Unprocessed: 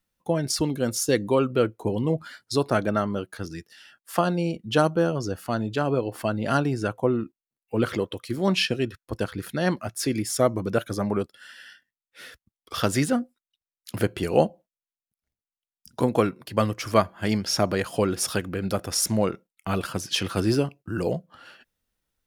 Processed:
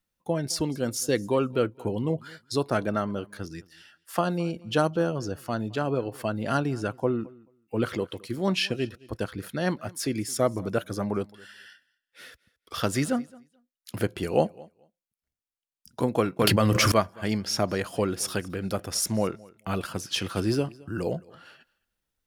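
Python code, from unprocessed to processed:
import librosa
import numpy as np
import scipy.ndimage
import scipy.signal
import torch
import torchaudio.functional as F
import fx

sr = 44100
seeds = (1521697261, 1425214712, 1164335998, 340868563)

p1 = x + fx.echo_feedback(x, sr, ms=217, feedback_pct=16, wet_db=-23.5, dry=0)
p2 = fx.env_flatten(p1, sr, amount_pct=100, at=(16.39, 16.92))
y = p2 * librosa.db_to_amplitude(-3.0)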